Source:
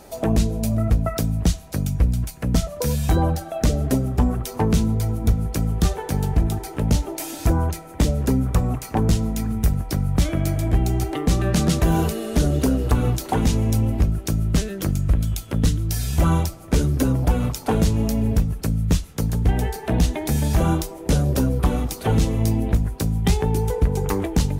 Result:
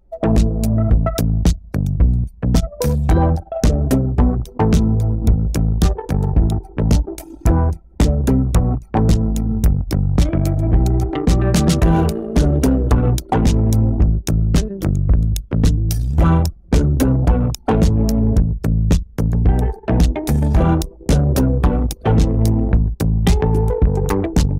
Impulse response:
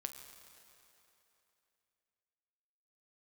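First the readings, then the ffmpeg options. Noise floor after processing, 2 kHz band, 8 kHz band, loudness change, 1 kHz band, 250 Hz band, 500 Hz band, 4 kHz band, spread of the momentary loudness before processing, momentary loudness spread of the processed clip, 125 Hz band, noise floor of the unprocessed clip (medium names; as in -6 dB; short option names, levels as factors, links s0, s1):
-41 dBFS, +2.0 dB, 0.0 dB, +5.0 dB, +4.0 dB, +4.5 dB, +4.5 dB, +1.0 dB, 4 LU, 4 LU, +5.0 dB, -38 dBFS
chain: -filter_complex "[0:a]asplit=2[s0][s1];[1:a]atrim=start_sample=2205,asetrate=36603,aresample=44100[s2];[s1][s2]afir=irnorm=-1:irlink=0,volume=0.299[s3];[s0][s3]amix=inputs=2:normalize=0,anlmdn=1000,acontrast=74,volume=0.75"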